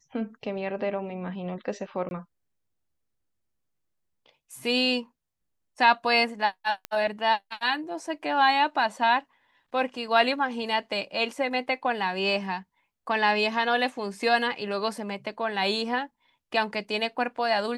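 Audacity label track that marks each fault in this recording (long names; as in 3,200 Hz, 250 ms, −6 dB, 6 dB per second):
2.090000	2.110000	drop-out 21 ms
6.850000	6.850000	click −17 dBFS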